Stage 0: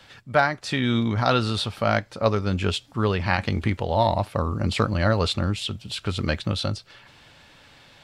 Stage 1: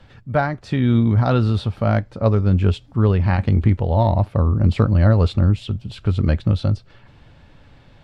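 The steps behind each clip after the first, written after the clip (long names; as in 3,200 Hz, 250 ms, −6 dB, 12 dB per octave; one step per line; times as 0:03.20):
spectral tilt −3.5 dB per octave
level −1.5 dB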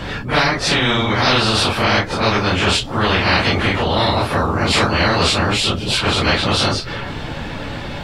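random phases in long frames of 100 ms
every bin compressed towards the loudest bin 4 to 1
level +1.5 dB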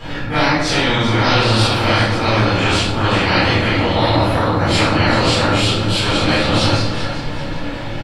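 repeating echo 389 ms, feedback 39%, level −11 dB
rectangular room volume 260 cubic metres, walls mixed, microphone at 4 metres
level −11.5 dB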